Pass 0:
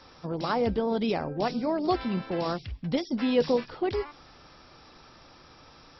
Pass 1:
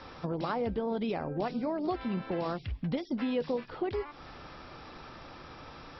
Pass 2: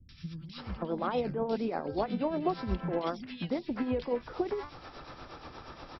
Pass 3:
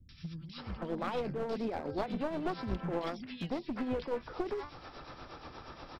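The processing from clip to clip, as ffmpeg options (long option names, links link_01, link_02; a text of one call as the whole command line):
ffmpeg -i in.wav -af "acompressor=threshold=-39dB:ratio=3,lowpass=3400,volume=6dB" out.wav
ffmpeg -i in.wav -filter_complex "[0:a]tremolo=f=8.4:d=0.58,acrossover=split=180|2300[link_01][link_02][link_03];[link_03]adelay=90[link_04];[link_02]adelay=580[link_05];[link_01][link_05][link_04]amix=inputs=3:normalize=0,volume=4dB" out.wav
ffmpeg -i in.wav -af "aeval=exprs='clip(val(0),-1,0.0224)':channel_layout=same,volume=-1.5dB" out.wav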